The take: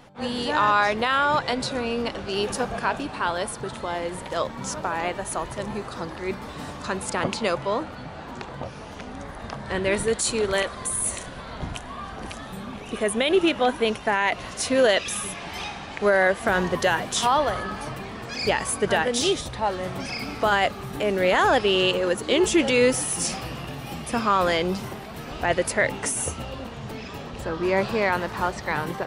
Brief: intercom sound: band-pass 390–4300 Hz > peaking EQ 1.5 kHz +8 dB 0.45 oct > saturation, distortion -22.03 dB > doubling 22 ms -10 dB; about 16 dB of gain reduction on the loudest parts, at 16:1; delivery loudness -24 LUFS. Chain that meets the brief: compression 16:1, threshold -31 dBFS; band-pass 390–4300 Hz; peaking EQ 1.5 kHz +8 dB 0.45 oct; saturation -22.5 dBFS; doubling 22 ms -10 dB; trim +12 dB

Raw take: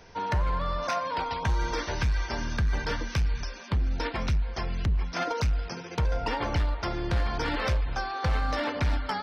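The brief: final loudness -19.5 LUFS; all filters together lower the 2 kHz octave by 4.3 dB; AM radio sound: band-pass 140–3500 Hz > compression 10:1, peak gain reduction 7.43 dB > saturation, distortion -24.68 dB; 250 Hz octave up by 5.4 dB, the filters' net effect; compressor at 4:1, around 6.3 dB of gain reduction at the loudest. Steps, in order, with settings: peaking EQ 250 Hz +8 dB; peaking EQ 2 kHz -5.5 dB; compression 4:1, threshold -29 dBFS; band-pass 140–3500 Hz; compression 10:1, threshold -34 dBFS; saturation -27 dBFS; trim +20.5 dB

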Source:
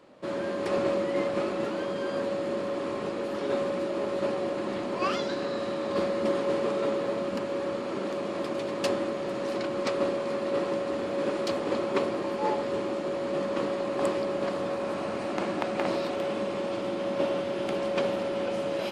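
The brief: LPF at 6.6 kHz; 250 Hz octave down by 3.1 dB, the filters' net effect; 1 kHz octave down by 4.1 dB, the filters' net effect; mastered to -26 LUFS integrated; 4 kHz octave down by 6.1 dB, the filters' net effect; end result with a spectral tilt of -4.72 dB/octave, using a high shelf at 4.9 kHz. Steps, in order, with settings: low-pass 6.6 kHz; peaking EQ 250 Hz -4 dB; peaking EQ 1 kHz -4.5 dB; peaking EQ 4 kHz -4.5 dB; treble shelf 4.9 kHz -6.5 dB; trim +6.5 dB

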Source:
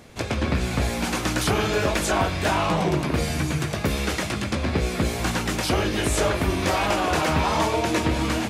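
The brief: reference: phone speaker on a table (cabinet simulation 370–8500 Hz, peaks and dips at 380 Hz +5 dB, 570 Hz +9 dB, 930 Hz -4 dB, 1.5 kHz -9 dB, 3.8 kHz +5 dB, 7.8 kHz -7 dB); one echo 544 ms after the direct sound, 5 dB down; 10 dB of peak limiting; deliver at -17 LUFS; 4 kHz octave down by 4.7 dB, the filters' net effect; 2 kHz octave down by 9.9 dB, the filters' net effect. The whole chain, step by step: peaking EQ 2 kHz -7.5 dB; peaking EQ 4 kHz -6 dB; peak limiter -21 dBFS; cabinet simulation 370–8500 Hz, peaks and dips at 380 Hz +5 dB, 570 Hz +9 dB, 930 Hz -4 dB, 1.5 kHz -9 dB, 3.8 kHz +5 dB, 7.8 kHz -7 dB; delay 544 ms -5 dB; trim +12.5 dB

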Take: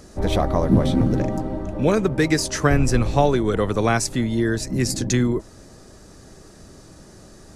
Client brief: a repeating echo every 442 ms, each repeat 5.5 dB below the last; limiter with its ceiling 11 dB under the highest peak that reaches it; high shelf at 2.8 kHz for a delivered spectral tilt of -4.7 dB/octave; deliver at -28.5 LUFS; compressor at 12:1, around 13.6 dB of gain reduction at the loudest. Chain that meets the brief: treble shelf 2.8 kHz +7.5 dB; compression 12:1, threshold -25 dBFS; peak limiter -23.5 dBFS; feedback delay 442 ms, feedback 53%, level -5.5 dB; trim +4 dB

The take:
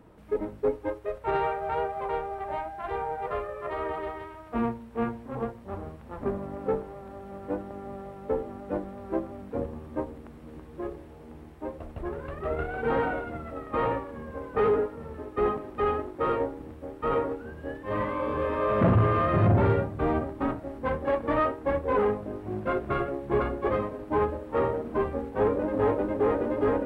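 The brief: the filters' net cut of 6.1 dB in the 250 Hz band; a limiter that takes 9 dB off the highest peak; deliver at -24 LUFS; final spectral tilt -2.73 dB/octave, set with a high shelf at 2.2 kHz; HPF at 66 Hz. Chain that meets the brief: high-pass 66 Hz; peaking EQ 250 Hz -8.5 dB; treble shelf 2.2 kHz +5 dB; trim +9 dB; peak limiter -12 dBFS

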